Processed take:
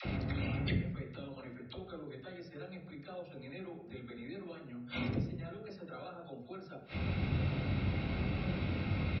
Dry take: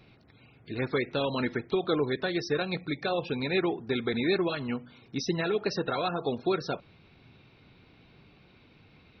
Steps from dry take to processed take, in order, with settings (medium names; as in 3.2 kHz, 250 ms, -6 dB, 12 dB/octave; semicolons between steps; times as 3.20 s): bass shelf 440 Hz +8 dB; inverted gate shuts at -30 dBFS, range -40 dB; high-pass 44 Hz; reverberation RT60 0.75 s, pre-delay 3 ms, DRR -1.5 dB; in parallel at -1 dB: compression, threshold -59 dBFS, peak gain reduction 18 dB; on the sum: elliptic low-pass 5.4 kHz; comb 1.5 ms, depth 33%; phase dispersion lows, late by 53 ms, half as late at 520 Hz; trim +11.5 dB